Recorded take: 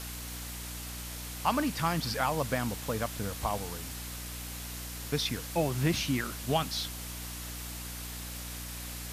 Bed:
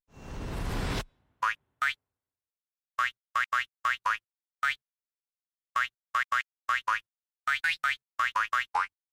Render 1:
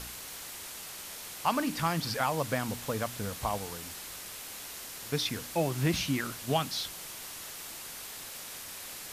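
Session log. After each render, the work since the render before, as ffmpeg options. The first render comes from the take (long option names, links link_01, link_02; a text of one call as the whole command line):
ffmpeg -i in.wav -af "bandreject=frequency=60:width_type=h:width=4,bandreject=frequency=120:width_type=h:width=4,bandreject=frequency=180:width_type=h:width=4,bandreject=frequency=240:width_type=h:width=4,bandreject=frequency=300:width_type=h:width=4" out.wav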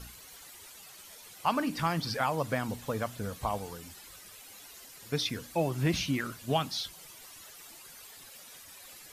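ffmpeg -i in.wav -af "afftdn=noise_reduction=12:noise_floor=-44" out.wav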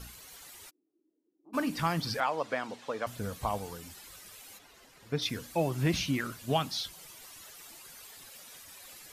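ffmpeg -i in.wav -filter_complex "[0:a]asplit=3[link_01][link_02][link_03];[link_01]afade=type=out:start_time=0.69:duration=0.02[link_04];[link_02]asuperpass=centerf=310:order=4:qfactor=4.7,afade=type=in:start_time=0.69:duration=0.02,afade=type=out:start_time=1.53:duration=0.02[link_05];[link_03]afade=type=in:start_time=1.53:duration=0.02[link_06];[link_04][link_05][link_06]amix=inputs=3:normalize=0,asettb=1/sr,asplit=3[link_07][link_08][link_09];[link_07]atrim=end=2.204[link_10];[link_08]atrim=start=2.2:end=3.07,asetpts=PTS-STARTPTS,afade=type=in:duration=0.004:curve=qsin,afade=type=out:start_time=0.866:duration=0.004:curve=qsin,highpass=350,lowpass=5100[link_11];[link_09]atrim=start=3.066[link_12];[link_10][link_11]acrossfade=duration=0.004:curve1=hsin:curve2=qsin[link_13];[link_13][link_12]acrossfade=duration=0.004:curve1=qsin:curve2=hsin,asplit=3[link_14][link_15][link_16];[link_14]afade=type=out:start_time=4.57:duration=0.02[link_17];[link_15]lowpass=frequency=2000:poles=1,afade=type=in:start_time=4.57:duration=0.02,afade=type=out:start_time=5.21:duration=0.02[link_18];[link_16]afade=type=in:start_time=5.21:duration=0.02[link_19];[link_17][link_18][link_19]amix=inputs=3:normalize=0" out.wav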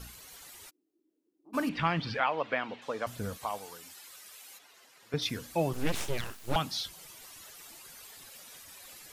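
ffmpeg -i in.wav -filter_complex "[0:a]asettb=1/sr,asplit=3[link_01][link_02][link_03];[link_01]atrim=end=1.694[link_04];[link_02]atrim=start=1.69:end=2.82,asetpts=PTS-STARTPTS,afade=type=in:duration=0.004:curve=qsin,afade=type=out:start_time=1.126:duration=0.004:curve=qsin,lowpass=frequency=2800:width_type=q:width=1.9[link_05];[link_03]atrim=start=2.816[link_06];[link_04][link_05]acrossfade=duration=0.004:curve1=hsin:curve2=qsin[link_07];[link_07][link_06]acrossfade=duration=0.004:curve1=qsin:curve2=hsin,asettb=1/sr,asplit=3[link_08][link_09][link_10];[link_08]atrim=end=3.374[link_11];[link_09]atrim=start=3.37:end=5.14,asetpts=PTS-STARTPTS,afade=type=in:duration=0.004:curve=qsin,afade=type=out:start_time=1.766:duration=0.004:curve=qsin,highpass=frequency=740:poles=1[link_12];[link_10]atrim=start=5.136[link_13];[link_11][link_12]acrossfade=duration=0.004:curve1=hsin:curve2=qsin[link_14];[link_14][link_13]acrossfade=duration=0.004:curve1=qsin:curve2=hsin,asettb=1/sr,asplit=3[link_15][link_16][link_17];[link_15]atrim=end=5.734[link_18];[link_16]atrim=start=5.73:end=6.56,asetpts=PTS-STARTPTS,afade=type=in:duration=0.004:curve=qsin,afade=type=out:start_time=0.826:duration=0.004:curve=qsin,aeval=exprs='abs(val(0))':channel_layout=same[link_19];[link_17]atrim=start=6.556[link_20];[link_18][link_19]acrossfade=duration=0.004:curve1=hsin:curve2=qsin[link_21];[link_21][link_20]acrossfade=duration=0.004:curve1=qsin:curve2=hsin" out.wav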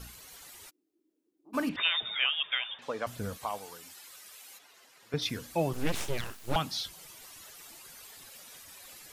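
ffmpeg -i in.wav -filter_complex "[0:a]asettb=1/sr,asplit=3[link_01][link_02][link_03];[link_01]atrim=end=1.764[link_04];[link_02]atrim=start=1.76:end=2.79,asetpts=PTS-STARTPTS,afade=type=in:duration=0.004:curve=qsin,afade=type=out:start_time=1.026:duration=0.004:curve=qsin,lowpass=frequency=3200:width_type=q:width=0.5098,lowpass=frequency=3200:width_type=q:width=0.6013,lowpass=frequency=3200:width_type=q:width=0.9,lowpass=frequency=3200:width_type=q:width=2.563,afreqshift=-3800[link_05];[link_03]atrim=start=2.786[link_06];[link_04][link_05]acrossfade=duration=0.004:curve1=hsin:curve2=qsin[link_07];[link_07][link_06]acrossfade=duration=0.004:curve1=qsin:curve2=hsin" out.wav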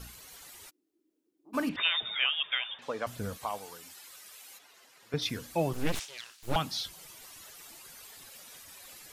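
ffmpeg -i in.wav -filter_complex "[0:a]asettb=1/sr,asplit=3[link_01][link_02][link_03];[link_01]atrim=end=5.994[link_04];[link_02]atrim=start=5.99:end=6.43,asetpts=PTS-STARTPTS,afade=type=in:duration=0.004:curve=qsin,afade=type=out:start_time=0.436:duration=0.004:curve=qsin,bandpass=frequency=4600:width_type=q:width=0.92[link_05];[link_03]atrim=start=6.426[link_06];[link_04][link_05]acrossfade=duration=0.004:curve1=hsin:curve2=qsin[link_07];[link_07][link_06]acrossfade=duration=0.004:curve1=qsin:curve2=hsin" out.wav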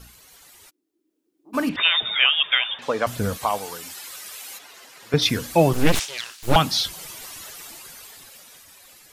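ffmpeg -i in.wav -af "dynaudnorm=framelen=250:gausssize=13:maxgain=14.5dB" out.wav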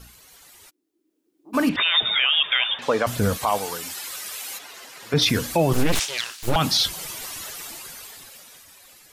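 ffmpeg -i in.wav -af "alimiter=limit=-14dB:level=0:latency=1:release=29,dynaudnorm=framelen=230:gausssize=11:maxgain=4dB" out.wav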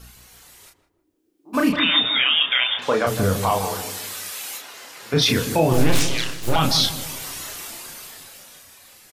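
ffmpeg -i in.wav -filter_complex "[0:a]asplit=2[link_01][link_02];[link_02]adelay=32,volume=-4dB[link_03];[link_01][link_03]amix=inputs=2:normalize=0,asplit=2[link_04][link_05];[link_05]adelay=158,lowpass=frequency=850:poles=1,volume=-7dB,asplit=2[link_06][link_07];[link_07]adelay=158,lowpass=frequency=850:poles=1,volume=0.49,asplit=2[link_08][link_09];[link_09]adelay=158,lowpass=frequency=850:poles=1,volume=0.49,asplit=2[link_10][link_11];[link_11]adelay=158,lowpass=frequency=850:poles=1,volume=0.49,asplit=2[link_12][link_13];[link_13]adelay=158,lowpass=frequency=850:poles=1,volume=0.49,asplit=2[link_14][link_15];[link_15]adelay=158,lowpass=frequency=850:poles=1,volume=0.49[link_16];[link_06][link_08][link_10][link_12][link_14][link_16]amix=inputs=6:normalize=0[link_17];[link_04][link_17]amix=inputs=2:normalize=0" out.wav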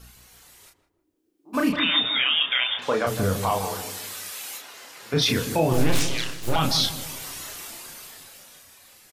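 ffmpeg -i in.wav -af "volume=-3.5dB" out.wav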